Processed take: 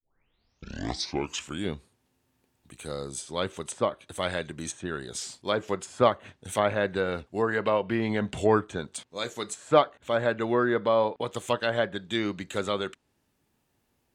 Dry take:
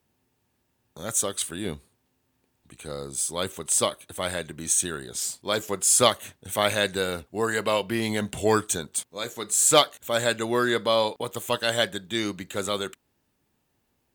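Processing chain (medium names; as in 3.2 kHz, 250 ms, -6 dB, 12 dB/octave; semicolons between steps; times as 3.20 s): tape start-up on the opening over 1.70 s; low-pass that closes with the level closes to 1.5 kHz, closed at -20.5 dBFS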